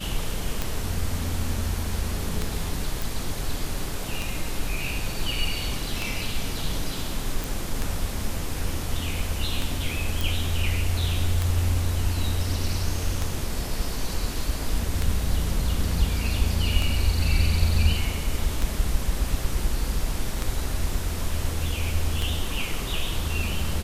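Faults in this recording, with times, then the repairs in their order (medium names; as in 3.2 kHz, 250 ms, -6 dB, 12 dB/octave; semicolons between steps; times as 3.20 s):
tick 33 1/3 rpm
3.02 s: pop
7.44 s: pop
10.21 s: pop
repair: de-click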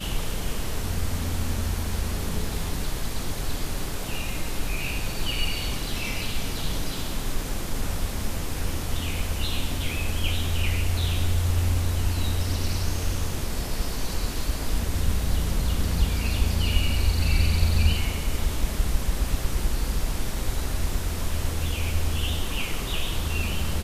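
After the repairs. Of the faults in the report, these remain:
nothing left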